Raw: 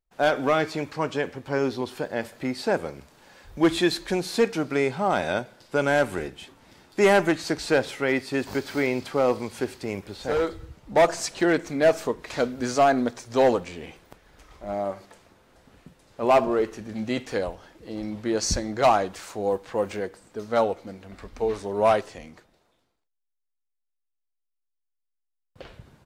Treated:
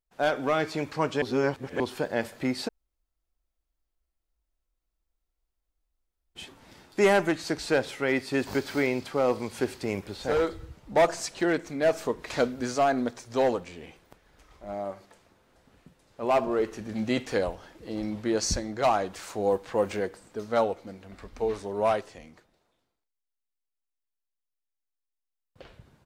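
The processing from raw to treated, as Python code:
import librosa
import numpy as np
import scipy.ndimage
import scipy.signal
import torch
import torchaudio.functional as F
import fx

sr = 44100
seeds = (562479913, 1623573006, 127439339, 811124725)

y = fx.edit(x, sr, fx.reverse_span(start_s=1.22, length_s=0.58),
    fx.room_tone_fill(start_s=2.68, length_s=3.68, crossfade_s=0.02), tone=tone)
y = fx.rider(y, sr, range_db=3, speed_s=0.5)
y = y * librosa.db_to_amplitude(-2.5)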